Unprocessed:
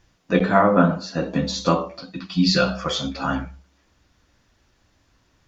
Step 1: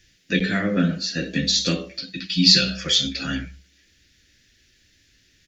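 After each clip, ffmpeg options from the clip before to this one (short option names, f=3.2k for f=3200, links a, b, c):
-filter_complex "[0:a]firequalizer=gain_entry='entry(400,0);entry(960,-23);entry(1700,8);entry(3800,11);entry(7500,9)':delay=0.05:min_phase=1,acrossover=split=300|3000[a][b][c];[b]acompressor=threshold=-22dB:ratio=6[d];[a][d][c]amix=inputs=3:normalize=0,volume=-1.5dB"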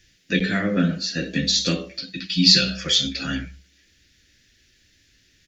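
-af anull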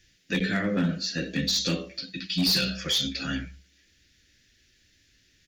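-filter_complex "[0:a]asplit=2[a][b];[b]alimiter=limit=-12.5dB:level=0:latency=1:release=40,volume=-1.5dB[c];[a][c]amix=inputs=2:normalize=0,asoftclip=type=hard:threshold=-10dB,volume=-9dB"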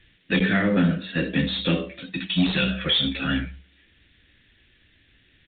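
-af "aeval=exprs='0.119*(cos(1*acos(clip(val(0)/0.119,-1,1)))-cos(1*PI/2))+0.00668*(cos(5*acos(clip(val(0)/0.119,-1,1)))-cos(5*PI/2))+0.00211*(cos(7*acos(clip(val(0)/0.119,-1,1)))-cos(7*PI/2))':c=same,volume=5.5dB" -ar 8000 -c:a adpcm_g726 -b:a 32k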